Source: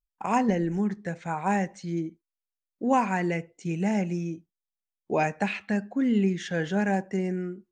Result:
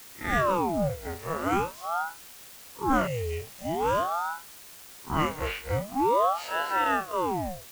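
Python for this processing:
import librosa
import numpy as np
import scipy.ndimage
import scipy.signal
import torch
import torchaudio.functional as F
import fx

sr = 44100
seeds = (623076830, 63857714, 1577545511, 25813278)

y = fx.spec_blur(x, sr, span_ms=80.0)
y = fx.quant_dither(y, sr, seeds[0], bits=8, dither='triangular')
y = fx.spec_repair(y, sr, seeds[1], start_s=3.09, length_s=0.35, low_hz=290.0, high_hz=2100.0, source='after')
y = fx.ring_lfo(y, sr, carrier_hz=710.0, swing_pct=65, hz=0.45)
y = y * 10.0 ** (3.5 / 20.0)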